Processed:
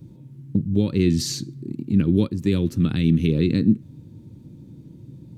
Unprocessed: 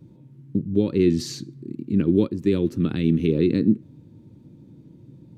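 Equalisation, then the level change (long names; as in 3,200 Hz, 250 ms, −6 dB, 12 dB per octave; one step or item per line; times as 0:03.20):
low-shelf EQ 180 Hz +8.5 dB
high-shelf EQ 3,600 Hz +9 dB
dynamic equaliser 370 Hz, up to −6 dB, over −30 dBFS, Q 1.3
0.0 dB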